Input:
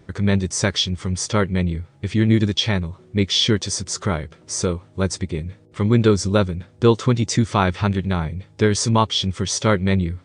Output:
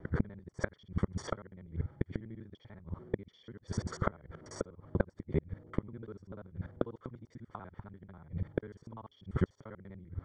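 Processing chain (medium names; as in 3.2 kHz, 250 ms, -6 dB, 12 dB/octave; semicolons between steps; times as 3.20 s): time reversed locally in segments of 49 ms; inverted gate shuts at -13 dBFS, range -28 dB; Savitzky-Golay filter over 41 samples; trim -2.5 dB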